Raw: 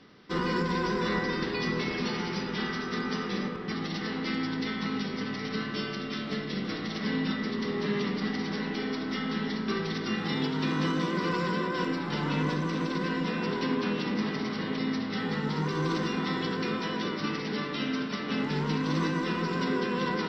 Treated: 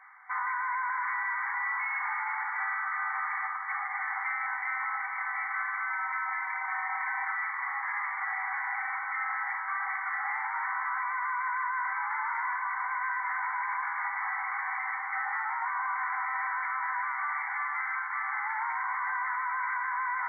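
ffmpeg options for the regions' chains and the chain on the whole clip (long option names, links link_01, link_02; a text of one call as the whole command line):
ffmpeg -i in.wav -filter_complex "[0:a]asettb=1/sr,asplit=3[link_01][link_02][link_03];[link_01]atrim=end=5.904[link_04];[link_02]atrim=start=5.9:end=7.25,asetpts=PTS-STARTPTS,afade=type=in:duration=0.004:curve=qsin,afade=type=out:start_time=1.346:duration=0.004:curve=qsin,aeval=exprs='val(0)+0.00398*sin(2*PI*950*n/s)':channel_layout=same,aecho=1:1:3.9:0.81,atrim=end_sample=59535[link_05];[link_03]atrim=start=7.246[link_06];[link_04][link_05]acrossfade=duration=0.004:curve1=hsin:curve2=qsin[link_07];[link_07][link_06]acrossfade=duration=0.004:curve1=qsin:curve2=hsin,afftfilt=real='re*between(b*sr/4096,750,2300)':imag='im*between(b*sr/4096,750,2300)':win_size=4096:overlap=0.75,alimiter=level_in=8.5dB:limit=-24dB:level=0:latency=1:release=23,volume=-8.5dB,volume=8.5dB" out.wav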